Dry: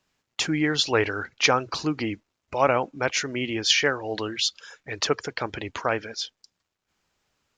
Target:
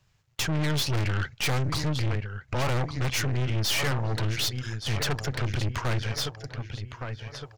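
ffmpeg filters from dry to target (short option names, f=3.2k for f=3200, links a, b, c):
-filter_complex "[0:a]lowshelf=f=170:t=q:w=3:g=11,asplit=2[a][b];[b]adelay=1162,lowpass=f=4.6k:p=1,volume=-13.5dB,asplit=2[c][d];[d]adelay=1162,lowpass=f=4.6k:p=1,volume=0.47,asplit=2[e][f];[f]adelay=1162,lowpass=f=4.6k:p=1,volume=0.47,asplit=2[g][h];[h]adelay=1162,lowpass=f=4.6k:p=1,volume=0.47,asplit=2[i][j];[j]adelay=1162,lowpass=f=4.6k:p=1,volume=0.47[k];[a][c][e][g][i][k]amix=inputs=6:normalize=0,aeval=exprs='(tanh(35.5*val(0)+0.7)-tanh(0.7))/35.5':c=same,volume=6dB"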